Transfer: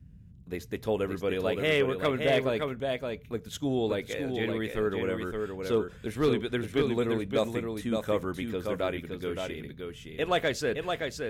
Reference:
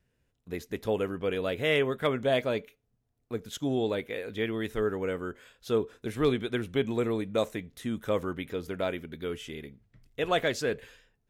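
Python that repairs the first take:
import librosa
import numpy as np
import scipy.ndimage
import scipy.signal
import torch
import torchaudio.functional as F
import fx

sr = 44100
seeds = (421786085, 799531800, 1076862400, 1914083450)

y = fx.fix_declip(x, sr, threshold_db=-17.0)
y = fx.noise_reduce(y, sr, print_start_s=0.0, print_end_s=0.5, reduce_db=25.0)
y = fx.fix_echo_inverse(y, sr, delay_ms=569, level_db=-5.0)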